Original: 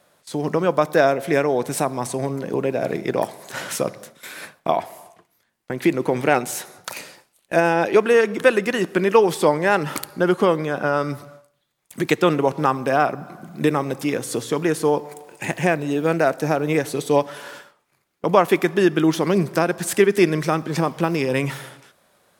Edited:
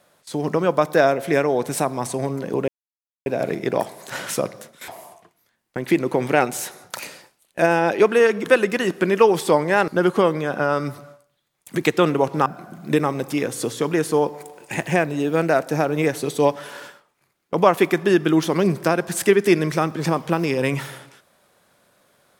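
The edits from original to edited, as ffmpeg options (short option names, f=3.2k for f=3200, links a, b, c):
-filter_complex "[0:a]asplit=5[a][b][c][d][e];[a]atrim=end=2.68,asetpts=PTS-STARTPTS,afade=t=out:st=2.676:d=0.004:c=hsin,apad=pad_dur=0.58[f];[b]atrim=start=2.68:end=4.302,asetpts=PTS-STARTPTS,afade=t=in:d=0.004:c=hsin[g];[c]atrim=start=4.818:end=9.822[h];[d]atrim=start=10.118:end=12.702[i];[e]atrim=start=13.168[j];[f][g]concat=n=2:v=0:a=1[k];[k][h]acrossfade=d=0.004:c1=hsin:c2=hsin[l];[l][i]acrossfade=d=0.004:c1=hsin:c2=hsin[m];[m][j]acrossfade=d=0.004:c1=hsin:c2=hsin"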